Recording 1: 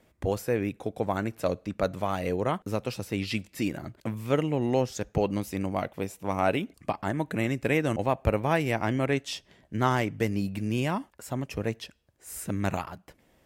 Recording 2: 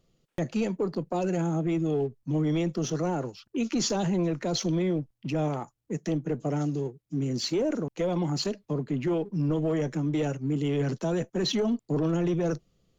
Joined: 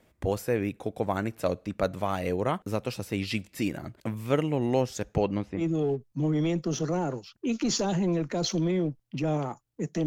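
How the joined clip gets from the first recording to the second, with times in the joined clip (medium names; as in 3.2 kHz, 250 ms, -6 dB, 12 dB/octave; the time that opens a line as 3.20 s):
recording 1
5.13–5.63 s: low-pass 10 kHz -> 1.1 kHz
5.59 s: go over to recording 2 from 1.70 s, crossfade 0.08 s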